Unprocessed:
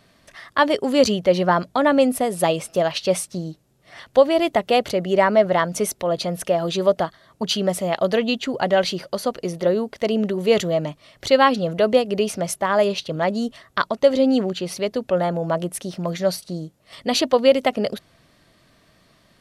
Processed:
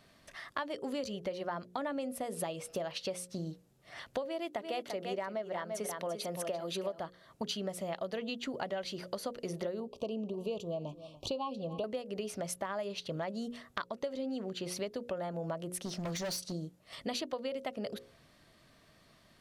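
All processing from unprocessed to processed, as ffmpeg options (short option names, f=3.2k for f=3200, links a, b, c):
-filter_complex "[0:a]asettb=1/sr,asplit=3[a][b][c];[a]atrim=end=4.254[d];[b]atrim=start=4.25:end=6.99,asetpts=PTS-STARTPTS,afade=t=in:d=0.004:c=qsin,afade=t=out:st=2.736:d=0.004:c=qsin,highpass=180,aecho=1:1:342:0.355,atrim=end_sample=120834[e];[c]atrim=start=6.986[f];[d][e]acrossfade=d=0.004:c1=hsin:c2=qsin[g];[g][f]acrossfade=d=0.004:c1=qsin:c2=hsin,asettb=1/sr,asplit=3[h][i][j];[h]atrim=end=9.804[k];[i]atrim=start=9.8:end=11.84,asetpts=PTS-STARTPTS,afade=t=in:d=0.004:c=qsin,afade=t=out:st=2.036:d=0.004:c=qsin,asuperstop=centerf=1700:order=12:qfactor=1.3,highshelf=f=4.4k:g=-9,aecho=1:1:290:0.0708,atrim=end_sample=89964[l];[j]atrim=start=11.836[m];[k][l]acrossfade=d=0.004:c1=hsin:c2=qsin[n];[n][m]acrossfade=d=0.004:c1=qsin:c2=hsin,asettb=1/sr,asplit=3[o][p][q];[o]atrim=end=15.854[r];[p]atrim=start=15.85:end=16.52,asetpts=PTS-STARTPTS,afade=t=in:d=0.004:c=qsin,afade=t=out:st=0.666:d=0.004:c=qsin,equalizer=f=6k:t=o:w=0.86:g=9,volume=25.5dB,asoftclip=hard,volume=-25.5dB[s];[q]atrim=start=16.516[t];[r][s]acrossfade=d=0.004:c1=hsin:c2=qsin[u];[u][t]acrossfade=d=0.004:c1=qsin:c2=hsin,bandreject=f=60:t=h:w=6,bandreject=f=120:t=h:w=6,bandreject=f=180:t=h:w=6,bandreject=f=240:t=h:w=6,bandreject=f=300:t=h:w=6,bandreject=f=360:t=h:w=6,bandreject=f=420:t=h:w=6,bandreject=f=480:t=h:w=6,bandreject=f=540:t=h:w=6,acompressor=threshold=-28dB:ratio=10,volume=-6dB"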